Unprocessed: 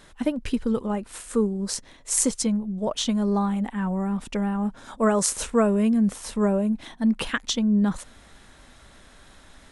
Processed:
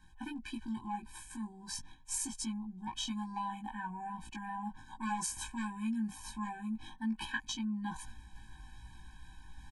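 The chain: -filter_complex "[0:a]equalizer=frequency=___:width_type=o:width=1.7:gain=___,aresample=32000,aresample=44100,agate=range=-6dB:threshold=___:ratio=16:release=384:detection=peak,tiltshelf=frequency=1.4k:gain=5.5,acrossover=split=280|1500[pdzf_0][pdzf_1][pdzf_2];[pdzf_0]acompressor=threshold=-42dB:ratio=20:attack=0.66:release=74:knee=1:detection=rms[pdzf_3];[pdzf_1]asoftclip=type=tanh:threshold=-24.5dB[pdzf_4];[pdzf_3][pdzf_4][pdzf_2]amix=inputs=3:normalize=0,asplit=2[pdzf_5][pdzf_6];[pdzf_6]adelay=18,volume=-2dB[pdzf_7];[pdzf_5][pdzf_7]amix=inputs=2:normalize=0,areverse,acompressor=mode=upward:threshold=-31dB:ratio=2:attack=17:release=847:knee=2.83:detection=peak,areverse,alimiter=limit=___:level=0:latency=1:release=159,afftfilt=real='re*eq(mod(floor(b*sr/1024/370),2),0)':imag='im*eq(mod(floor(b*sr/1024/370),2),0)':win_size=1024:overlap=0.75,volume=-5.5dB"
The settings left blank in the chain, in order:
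300, -11.5, -41dB, -14dB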